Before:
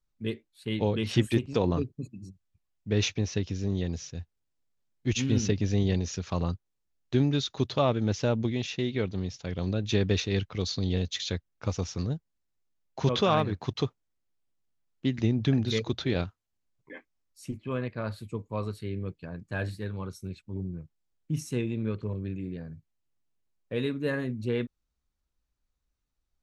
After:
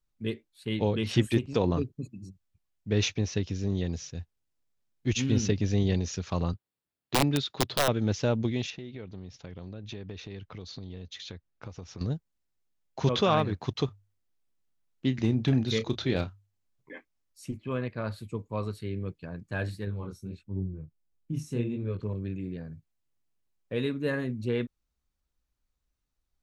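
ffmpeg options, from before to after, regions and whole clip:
-filter_complex "[0:a]asettb=1/sr,asplit=3[a][b][c];[a]atrim=end=6.534[d];[b]atrim=start=6.53:end=7.88,asetpts=PTS-STARTPTS,afade=t=in:d=0.004:c=qsin,afade=t=out:st=1.346:d=0.004:c=qsin,highpass=100,equalizer=f=6.2k:w=4:g=-12,aeval=exprs='(mod(6.68*val(0)+1,2)-1)/6.68':c=same[e];[c]atrim=start=7.876[f];[d][e]acrossfade=d=0.004:c1=hsin:c2=qsin[g];[g][f]acrossfade=d=0.004:c1=qsin:c2=hsin,asettb=1/sr,asplit=3[h][i][j];[h]atrim=end=8.704[k];[i]atrim=start=8.7:end=12.01,asetpts=PTS-STARTPTS,afade=t=in:d=0.004:c=qsin,afade=t=out:st=3.306:d=0.004:c=qsin,aemphasis=mode=reproduction:type=50fm,acompressor=threshold=-39dB:ratio=4:attack=3.2:release=140:knee=1:detection=peak[l];[j]atrim=start=12.006[m];[k][l]acrossfade=d=0.004:c1=hsin:c2=qsin[n];[n][m]acrossfade=d=0.004:c1=qsin:c2=hsin,asettb=1/sr,asplit=3[o][p][q];[o]atrim=end=13.854[r];[p]atrim=start=13.85:end=16.95,asetpts=PTS-STARTPTS,afade=t=in:d=0.004:c=qsin,afade=t=out:st=3.096:d=0.004:c=qsin,bandreject=f=50:t=h:w=6,bandreject=f=100:t=h:w=6,asoftclip=type=hard:threshold=-15.5dB,asplit=2[s][t];[t]adelay=31,volume=-12.5dB[u];[s][u]amix=inputs=2:normalize=0,atrim=end_sample=136710[v];[q]atrim=start=16.946[w];[r][v]acrossfade=d=0.004:c1=hsin:c2=qsin[x];[x][w]acrossfade=d=0.004:c1=qsin:c2=hsin,asettb=1/sr,asplit=3[y][z][aa];[y]atrim=end=19.854[ab];[z]atrim=start=19.85:end=22,asetpts=PTS-STARTPTS,afade=t=in:d=0.004:c=qsin,afade=t=out:st=2.146:d=0.004:c=qsin,tiltshelf=f=640:g=3.5,flanger=delay=20:depth=6.7:speed=1.5[ac];[aa]atrim=start=21.996[ad];[ab][ac]acrossfade=d=0.004:c1=hsin:c2=qsin[ae];[ae][ad]acrossfade=d=0.004:c1=qsin:c2=hsin"

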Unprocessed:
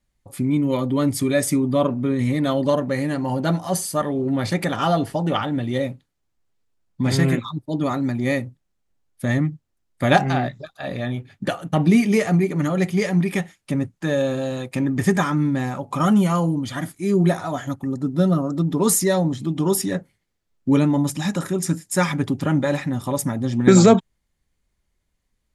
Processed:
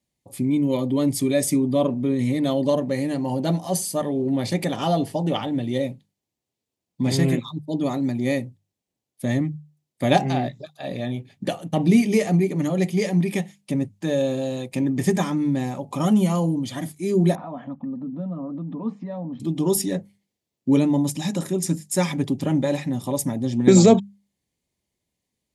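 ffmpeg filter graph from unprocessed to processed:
-filter_complex "[0:a]asettb=1/sr,asplit=3[a][b][c];[a]atrim=end=17.354[d];[b]atrim=start=17.35:end=19.4,asetpts=PTS-STARTPTS,afade=t=in:d=0.004:c=qsin,afade=t=out:st=2.046:d=0.004:c=qsin,acompressor=threshold=-29dB:ratio=3:attack=3.2:release=140:knee=1:detection=peak,highpass=100,equalizer=f=120:t=q:w=4:g=-8,equalizer=f=230:t=q:w=4:g=9,equalizer=f=380:t=q:w=4:g=-6,equalizer=f=1.1k:t=q:w=4:g=6,equalizer=f=2k:t=q:w=4:g=-8,lowpass=f=2.3k:w=0.5412,lowpass=f=2.3k:w=1.3066,bandreject=f=380:w=7[e];[c]atrim=start=19.396[f];[d][e]acrossfade=d=0.004:c1=hsin:c2=qsin[g];[g][f]acrossfade=d=0.004:c1=qsin:c2=hsin,highpass=120,equalizer=f=1.4k:t=o:w=0.78:g=-13,bandreject=f=50:t=h:w=6,bandreject=f=100:t=h:w=6,bandreject=f=150:t=h:w=6,bandreject=f=200:t=h:w=6"

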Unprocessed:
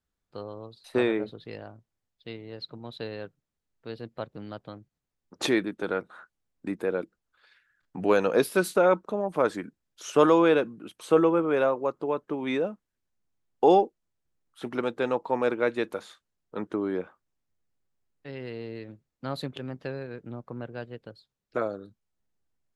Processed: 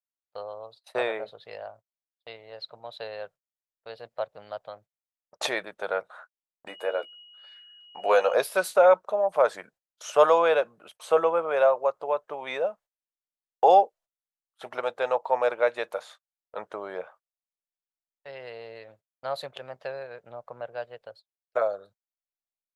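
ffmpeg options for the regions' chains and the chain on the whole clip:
-filter_complex "[0:a]asettb=1/sr,asplit=3[a][b][c];[a]atrim=end=6.684[d];[b]atrim=start=6.68:end=8.34,asetpts=PTS-STARTPTS,afade=t=in:d=0.004:c=qsin,afade=t=out:st=1.656:d=0.004:c=qsin,highpass=270,aeval=exprs='val(0)+0.00794*sin(2*PI*2900*n/s)':c=same,asplit=2[e][f];[f]adelay=14,volume=-6dB[g];[e][g]amix=inputs=2:normalize=0,atrim=end_sample=73206[h];[c]atrim=start=8.336[i];[d][h]acrossfade=d=0.004:c1=hsin:c2=qsin[j];[j][i]acrossfade=d=0.004:c1=qsin:c2=hsin,agate=range=-23dB:threshold=-50dB:ratio=16:detection=peak,lowshelf=f=420:t=q:w=3:g=-13"

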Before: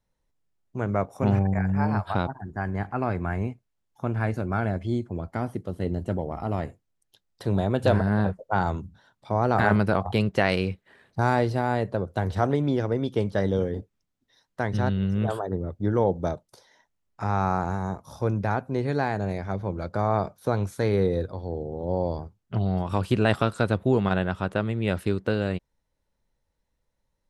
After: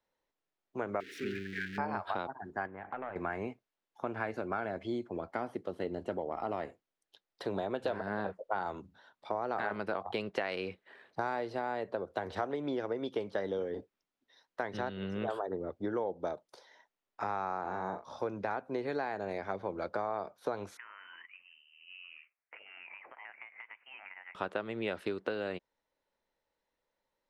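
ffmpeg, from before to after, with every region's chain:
-filter_complex "[0:a]asettb=1/sr,asplit=3[a][b][c];[a]atrim=end=1.004[d];[b]atrim=start=1:end=1.78,asetpts=PTS-STARTPTS,afade=t=in:d=0.004:c=qsin,afade=t=out:st=0.776:d=0.004:c=qsin,aeval=exprs='val(0)+0.5*0.0355*sgn(val(0))':c=same,asuperstop=centerf=790:order=12:qfactor=0.69,bass=f=250:g=-11,treble=f=4k:g=-7[e];[c]atrim=start=1.776[f];[d][e]acrossfade=d=0.004:c1=hsin:c2=qsin[g];[g][f]acrossfade=d=0.004:c1=qsin:c2=hsin,asettb=1/sr,asplit=3[h][i][j];[h]atrim=end=2.664[k];[i]atrim=start=2.66:end=3.16,asetpts=PTS-STARTPTS,afade=t=in:d=0.004:c=qsin,afade=t=out:st=0.496:d=0.004:c=qsin,aeval=exprs='clip(val(0),-1,0.0266)':c=same,lowpass=f=2.4k:w=0.5412,lowpass=f=2.4k:w=1.3066,acompressor=threshold=-33dB:ratio=6:attack=3.2:release=140:knee=1:detection=peak[l];[j]atrim=start=3.156[m];[k][l]acrossfade=d=0.004:c1=hsin:c2=qsin[n];[n][m]acrossfade=d=0.004:c1=qsin:c2=hsin,asettb=1/sr,asplit=3[o][p][q];[o]atrim=end=17.614[r];[p]atrim=start=17.61:end=18.19,asetpts=PTS-STARTPTS,afade=t=in:d=0.004:c=qsin,afade=t=out:st=0.576:d=0.004:c=qsin,lowpass=5k,asplit=2[s][t];[t]adelay=38,volume=-8.5dB[u];[s][u]amix=inputs=2:normalize=0,atrim=end_sample=25578[v];[q]atrim=start=18.186[w];[r][v]acrossfade=d=0.004:c1=hsin:c2=qsin[x];[x][w]acrossfade=d=0.004:c1=qsin:c2=hsin,asettb=1/sr,asplit=3[y][z][aa];[y]atrim=end=20.774[ab];[z]atrim=start=20.77:end=24.35,asetpts=PTS-STARTPTS,afade=t=in:d=0.004:c=qsin,afade=t=out:st=3.576:d=0.004:c=qsin,highpass=f=1.2k:w=0.5412,highpass=f=1.2k:w=1.3066,acompressor=threshold=-44dB:ratio=10:attack=3.2:release=140:knee=1:detection=peak,lowpass=f=3k:t=q:w=0.5098,lowpass=f=3k:t=q:w=0.6013,lowpass=f=3k:t=q:w=0.9,lowpass=f=3k:t=q:w=2.563,afreqshift=-3500[ac];[aa]atrim=start=24.346[ad];[ab][ac]acrossfade=d=0.004:c1=hsin:c2=qsin[ae];[ae][ad]acrossfade=d=0.004:c1=qsin:c2=hsin,acrossover=split=280 5000:gain=0.1 1 0.224[af][ag][ah];[af][ag][ah]amix=inputs=3:normalize=0,acompressor=threshold=-31dB:ratio=6"

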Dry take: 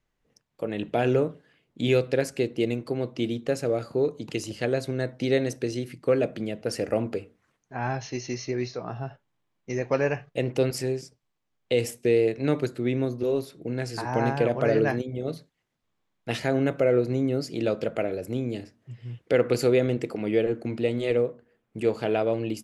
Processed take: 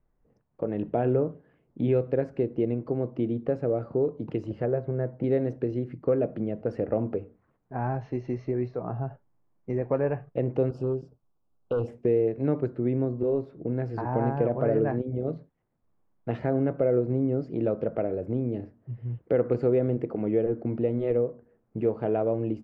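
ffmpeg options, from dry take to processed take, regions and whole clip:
-filter_complex "[0:a]asettb=1/sr,asplit=3[a][b][c];[a]atrim=end=4.614[d];[b]atrim=start=4.61:end=5.24,asetpts=PTS-STARTPTS,afade=t=in:d=0.004:c=qsin,afade=t=out:st=0.626:d=0.004:c=qsin,lowpass=2k,bandreject=f=270:w=5.9[e];[c]atrim=start=5.236[f];[d][e]acrossfade=d=0.004:c1=hsin:c2=qsin[g];[g][f]acrossfade=d=0.004:c1=qsin:c2=hsin,asettb=1/sr,asplit=3[h][i][j];[h]atrim=end=10.694[k];[i]atrim=start=10.69:end=11.88,asetpts=PTS-STARTPTS,afade=t=in:d=0.004:c=qsin,afade=t=out:st=1.186:d=0.004:c=qsin,volume=23dB,asoftclip=hard,volume=-23dB,asuperstop=centerf=2000:order=8:qfactor=1.9[l];[j]atrim=start=11.876[m];[k][l]acrossfade=d=0.004:c1=hsin:c2=qsin[n];[n][m]acrossfade=d=0.004:c1=qsin:c2=hsin,lowpass=1k,lowshelf=f=78:g=5.5,acompressor=threshold=-33dB:ratio=1.5,volume=3.5dB"

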